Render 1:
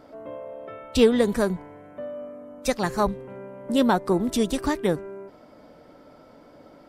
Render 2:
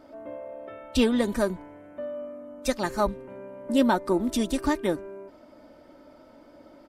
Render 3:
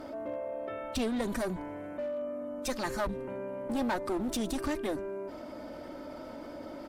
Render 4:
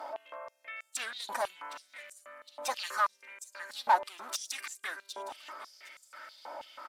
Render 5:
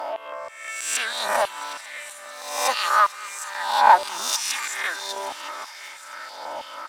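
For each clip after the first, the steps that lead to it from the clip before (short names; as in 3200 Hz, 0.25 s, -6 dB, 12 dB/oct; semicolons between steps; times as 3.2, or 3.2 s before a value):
comb 3.3 ms, depth 50%; gain -3 dB
one-sided clip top -31 dBFS; fast leveller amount 50%; gain -6 dB
feedback echo 0.762 s, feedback 30%, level -13 dB; stepped high-pass 6.2 Hz 860–7400 Hz
spectral swells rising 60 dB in 0.80 s; thin delay 0.223 s, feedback 82%, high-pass 1400 Hz, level -17 dB; gain +8.5 dB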